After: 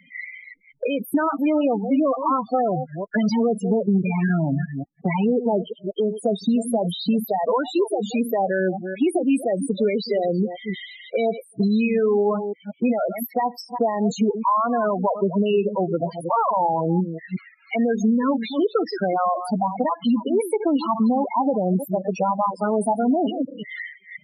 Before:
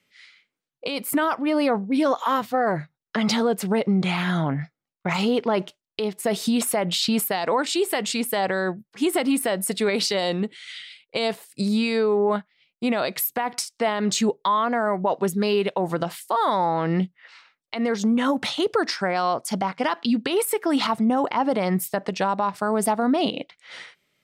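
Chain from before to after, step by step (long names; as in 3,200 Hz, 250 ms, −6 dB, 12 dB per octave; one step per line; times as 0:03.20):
delay that plays each chunk backwards 179 ms, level −10.5 dB
spectral peaks only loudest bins 8
multiband upward and downward compressor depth 70%
level +2 dB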